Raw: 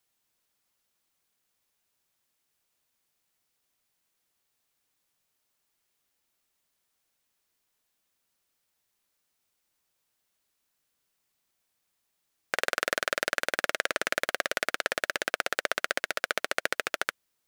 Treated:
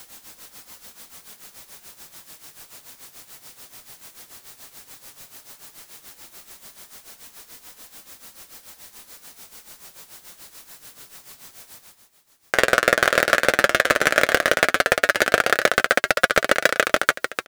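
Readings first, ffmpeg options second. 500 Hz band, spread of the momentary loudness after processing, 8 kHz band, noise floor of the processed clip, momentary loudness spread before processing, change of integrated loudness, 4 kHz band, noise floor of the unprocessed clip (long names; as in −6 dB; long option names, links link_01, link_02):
+13.5 dB, 2 LU, +9.5 dB, −54 dBFS, 2 LU, +11.5 dB, +9.0 dB, −79 dBFS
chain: -filter_complex "[0:a]asplit=2[link_01][link_02];[link_02]aeval=exprs='0.2*(abs(mod(val(0)/0.2+3,4)-2)-1)':channel_layout=same,volume=-7dB[link_03];[link_01][link_03]amix=inputs=2:normalize=0,aecho=1:1:519:0.211,flanger=delay=3.7:depth=4.4:regen=-58:speed=0.12:shape=sinusoidal,areverse,acompressor=mode=upward:threshold=-49dB:ratio=2.5,areverse,equalizer=frequency=2700:width_type=o:width=0.77:gain=-2.5,tremolo=f=6.9:d=0.74,volume=20dB,asoftclip=hard,volume=-20dB,acontrast=83,alimiter=level_in=16.5dB:limit=-1dB:release=50:level=0:latency=1,volume=-1dB"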